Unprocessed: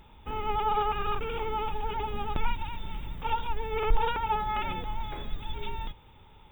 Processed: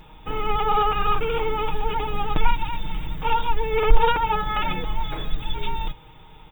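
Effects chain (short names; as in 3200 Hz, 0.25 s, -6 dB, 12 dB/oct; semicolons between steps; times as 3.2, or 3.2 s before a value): comb 6.4 ms, depth 64%; gain +6.5 dB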